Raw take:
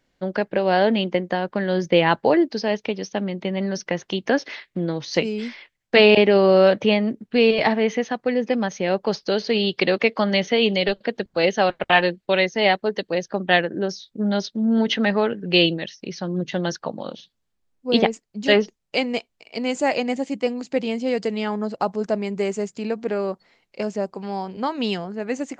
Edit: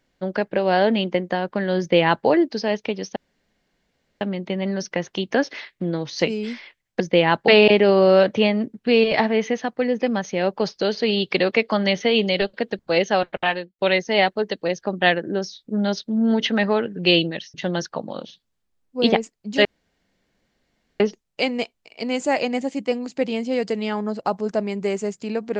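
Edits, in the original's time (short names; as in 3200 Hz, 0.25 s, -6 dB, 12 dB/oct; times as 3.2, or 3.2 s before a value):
1.79–2.27 copy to 5.95
3.16 insert room tone 1.05 s
11.41–12.26 fade out equal-power
16.01–16.44 cut
18.55 insert room tone 1.35 s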